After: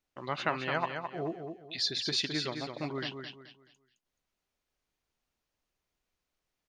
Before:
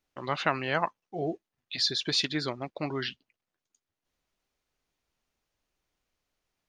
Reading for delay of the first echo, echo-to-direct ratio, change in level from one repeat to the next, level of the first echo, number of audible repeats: 214 ms, −6.0 dB, −10.0 dB, −6.5 dB, 3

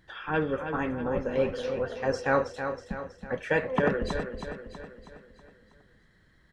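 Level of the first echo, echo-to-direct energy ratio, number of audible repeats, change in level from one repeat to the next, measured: −8.0 dB, −6.5 dB, 5, −6.0 dB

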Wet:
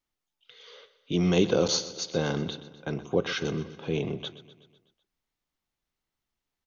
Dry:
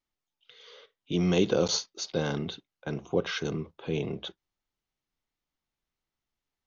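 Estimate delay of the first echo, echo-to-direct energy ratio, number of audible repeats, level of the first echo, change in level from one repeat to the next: 125 ms, −14.0 dB, 4, −15.5 dB, −5.0 dB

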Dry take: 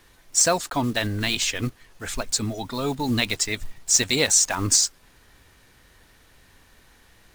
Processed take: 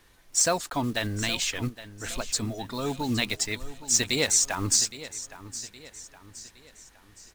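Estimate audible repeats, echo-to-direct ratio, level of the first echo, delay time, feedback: 3, −14.0 dB, −15.0 dB, 816 ms, 44%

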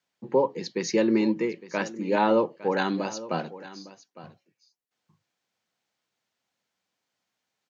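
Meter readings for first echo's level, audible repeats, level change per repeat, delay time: −17.0 dB, 1, repeats not evenly spaced, 858 ms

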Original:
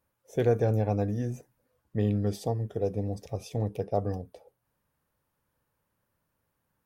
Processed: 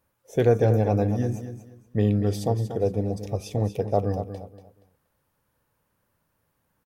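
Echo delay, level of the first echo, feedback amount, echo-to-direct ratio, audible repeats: 237 ms, −10.5 dB, 25%, −10.0 dB, 3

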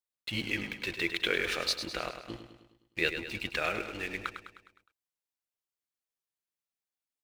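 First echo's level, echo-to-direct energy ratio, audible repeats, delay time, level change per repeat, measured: −9.0 dB, −7.5 dB, 5, 103 ms, −5.5 dB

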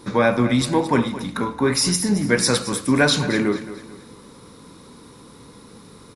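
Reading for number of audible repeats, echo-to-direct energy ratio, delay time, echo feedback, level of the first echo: 3, −13.5 dB, 221 ms, 37%, −14.0 dB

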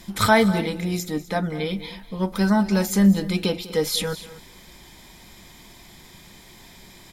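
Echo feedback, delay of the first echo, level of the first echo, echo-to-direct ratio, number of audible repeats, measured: repeats not evenly spaced, 197 ms, −17.5 dB, −14.5 dB, 2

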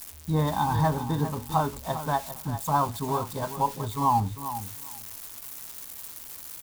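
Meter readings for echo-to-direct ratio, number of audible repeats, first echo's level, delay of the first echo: −11.5 dB, 2, −11.5 dB, 400 ms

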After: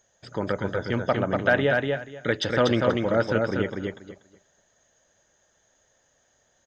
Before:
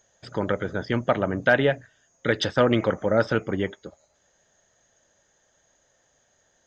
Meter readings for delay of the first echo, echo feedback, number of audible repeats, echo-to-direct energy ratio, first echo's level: 241 ms, 19%, 3, −3.5 dB, −3.5 dB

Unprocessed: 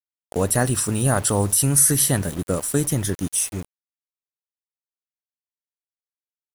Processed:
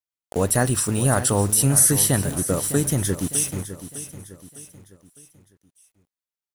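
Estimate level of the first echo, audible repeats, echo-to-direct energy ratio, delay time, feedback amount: −12.5 dB, 4, −11.5 dB, 606 ms, 43%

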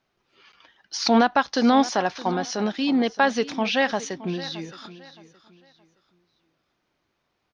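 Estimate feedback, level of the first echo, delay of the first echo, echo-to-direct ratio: 29%, −16.5 dB, 619 ms, −16.0 dB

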